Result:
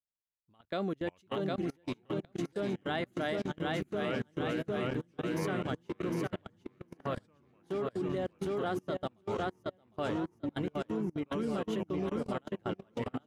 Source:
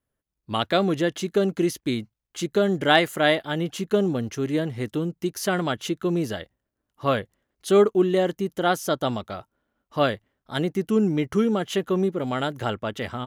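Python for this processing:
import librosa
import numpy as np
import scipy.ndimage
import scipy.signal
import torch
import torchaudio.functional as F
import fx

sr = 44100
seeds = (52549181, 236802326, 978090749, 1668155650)

y = fx.echo_pitch(x, sr, ms=386, semitones=-4, count=3, db_per_echo=-6.0)
y = fx.high_shelf(y, sr, hz=3600.0, db=-7.0)
y = fx.echo_feedback(y, sr, ms=757, feedback_pct=49, wet_db=-3.5)
y = fx.level_steps(y, sr, step_db=23)
y = fx.upward_expand(y, sr, threshold_db=-43.0, expansion=1.5)
y = F.gain(torch.from_numpy(y), -9.0).numpy()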